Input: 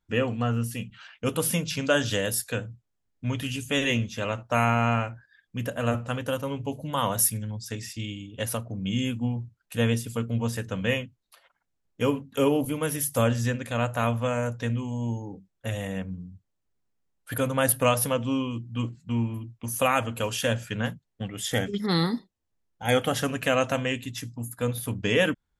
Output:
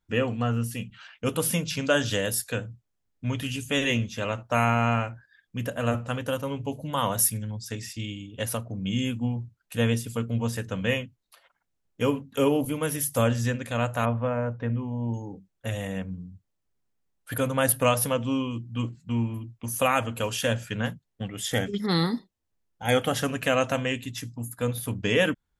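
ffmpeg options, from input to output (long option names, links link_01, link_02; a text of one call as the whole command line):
ffmpeg -i in.wav -filter_complex "[0:a]asettb=1/sr,asplit=3[link_01][link_02][link_03];[link_01]atrim=end=14.054[link_04];[link_02]atrim=start=14.05:end=15.14,asetpts=PTS-STARTPTS,afade=type=in:duration=0.004:curve=qsin,afade=type=out:start_time=1.086:duration=0.004:curve=qsin,lowpass=1600[link_05];[link_03]atrim=start=15.136[link_06];[link_04][link_05]acrossfade=duration=0.004:curve1=hsin:curve2=qsin[link_07];[link_07][link_06]acrossfade=duration=0.004:curve1=qsin:curve2=hsin" out.wav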